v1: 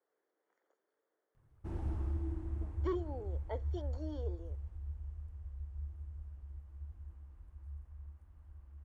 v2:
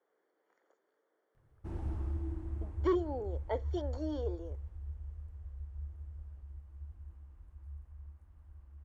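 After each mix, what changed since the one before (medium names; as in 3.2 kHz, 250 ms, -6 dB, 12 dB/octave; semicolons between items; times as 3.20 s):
speech +6.5 dB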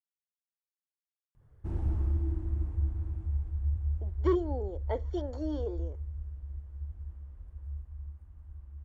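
speech: entry +1.40 s; master: add bass shelf 250 Hz +8 dB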